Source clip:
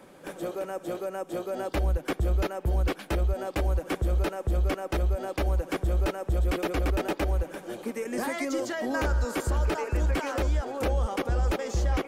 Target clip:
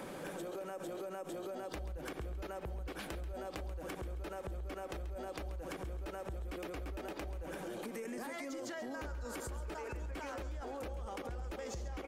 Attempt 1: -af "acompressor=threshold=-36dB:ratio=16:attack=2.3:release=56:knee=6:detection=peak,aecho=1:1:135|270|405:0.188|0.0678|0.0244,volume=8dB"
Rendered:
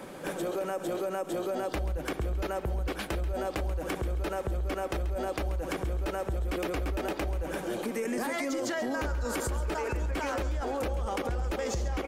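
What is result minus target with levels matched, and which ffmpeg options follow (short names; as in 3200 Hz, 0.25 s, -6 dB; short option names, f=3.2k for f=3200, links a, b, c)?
compressor: peak gain reduction -11 dB
-af "acompressor=threshold=-48dB:ratio=16:attack=2.3:release=56:knee=6:detection=peak,aecho=1:1:135|270|405:0.188|0.0678|0.0244,volume=8dB"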